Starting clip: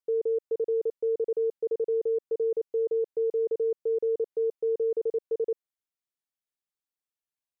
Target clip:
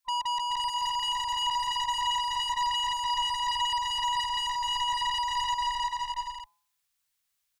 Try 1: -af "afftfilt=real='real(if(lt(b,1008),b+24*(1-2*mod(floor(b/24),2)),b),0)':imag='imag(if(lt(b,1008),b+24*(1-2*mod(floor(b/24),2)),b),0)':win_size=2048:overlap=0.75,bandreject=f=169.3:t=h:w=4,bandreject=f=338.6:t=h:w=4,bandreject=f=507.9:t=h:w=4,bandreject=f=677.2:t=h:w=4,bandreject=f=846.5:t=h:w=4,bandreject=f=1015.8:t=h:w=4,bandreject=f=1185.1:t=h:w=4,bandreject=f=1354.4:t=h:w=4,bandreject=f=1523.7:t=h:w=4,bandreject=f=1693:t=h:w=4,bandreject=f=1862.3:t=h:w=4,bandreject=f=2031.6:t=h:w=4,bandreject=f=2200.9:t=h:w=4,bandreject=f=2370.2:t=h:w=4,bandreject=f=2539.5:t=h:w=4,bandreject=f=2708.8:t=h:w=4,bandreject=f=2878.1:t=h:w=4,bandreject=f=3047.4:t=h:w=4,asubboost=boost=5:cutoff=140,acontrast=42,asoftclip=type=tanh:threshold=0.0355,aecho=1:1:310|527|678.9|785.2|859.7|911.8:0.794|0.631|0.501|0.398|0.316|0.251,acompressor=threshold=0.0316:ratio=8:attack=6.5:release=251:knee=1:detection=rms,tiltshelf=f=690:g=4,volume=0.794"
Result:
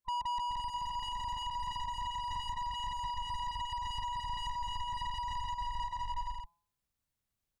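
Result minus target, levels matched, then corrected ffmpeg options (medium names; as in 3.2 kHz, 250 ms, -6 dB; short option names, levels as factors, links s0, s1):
500 Hz band +7.5 dB; compression: peak gain reduction +7 dB
-af "afftfilt=real='real(if(lt(b,1008),b+24*(1-2*mod(floor(b/24),2)),b),0)':imag='imag(if(lt(b,1008),b+24*(1-2*mod(floor(b/24),2)),b),0)':win_size=2048:overlap=0.75,bandreject=f=169.3:t=h:w=4,bandreject=f=338.6:t=h:w=4,bandreject=f=507.9:t=h:w=4,bandreject=f=677.2:t=h:w=4,bandreject=f=846.5:t=h:w=4,bandreject=f=1015.8:t=h:w=4,bandreject=f=1185.1:t=h:w=4,bandreject=f=1354.4:t=h:w=4,bandreject=f=1523.7:t=h:w=4,bandreject=f=1693:t=h:w=4,bandreject=f=1862.3:t=h:w=4,bandreject=f=2031.6:t=h:w=4,bandreject=f=2200.9:t=h:w=4,bandreject=f=2370.2:t=h:w=4,bandreject=f=2539.5:t=h:w=4,bandreject=f=2708.8:t=h:w=4,bandreject=f=2878.1:t=h:w=4,bandreject=f=3047.4:t=h:w=4,asubboost=boost=5:cutoff=140,acontrast=42,asoftclip=type=tanh:threshold=0.0355,tiltshelf=f=690:g=-7.5,aecho=1:1:310|527|678.9|785.2|859.7|911.8:0.794|0.631|0.501|0.398|0.316|0.251,volume=0.794"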